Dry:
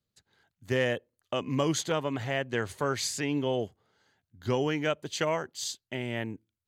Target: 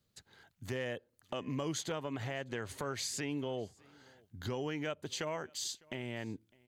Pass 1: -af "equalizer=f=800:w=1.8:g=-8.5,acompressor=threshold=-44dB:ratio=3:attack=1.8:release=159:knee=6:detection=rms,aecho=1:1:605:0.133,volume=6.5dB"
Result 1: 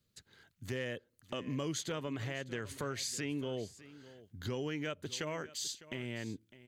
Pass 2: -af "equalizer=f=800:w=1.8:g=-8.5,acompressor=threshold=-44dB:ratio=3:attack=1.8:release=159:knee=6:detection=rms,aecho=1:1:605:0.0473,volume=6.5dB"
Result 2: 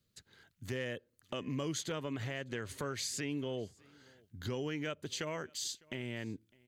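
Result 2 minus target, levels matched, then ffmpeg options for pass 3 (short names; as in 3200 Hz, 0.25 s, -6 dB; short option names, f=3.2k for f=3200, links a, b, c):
1000 Hz band -3.0 dB
-af "acompressor=threshold=-44dB:ratio=3:attack=1.8:release=159:knee=6:detection=rms,aecho=1:1:605:0.0473,volume=6.5dB"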